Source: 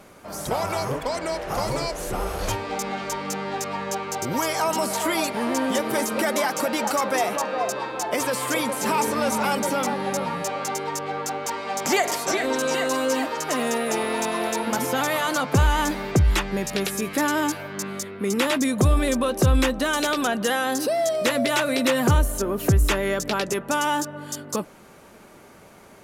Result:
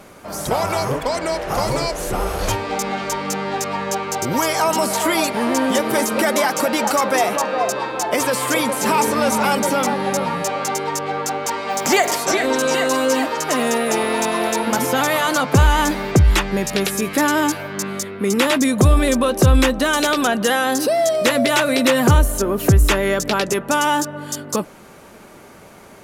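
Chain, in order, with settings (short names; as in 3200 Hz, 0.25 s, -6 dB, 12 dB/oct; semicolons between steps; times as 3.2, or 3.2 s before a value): 11.69–12.16 added noise violet -56 dBFS; gain +5.5 dB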